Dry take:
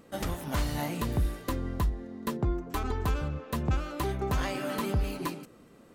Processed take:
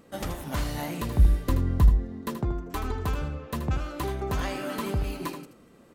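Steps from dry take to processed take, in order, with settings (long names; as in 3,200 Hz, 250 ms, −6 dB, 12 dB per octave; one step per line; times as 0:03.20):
0:01.19–0:02.21: low-shelf EQ 200 Hz +11.5 dB
on a send: single-tap delay 79 ms −9.5 dB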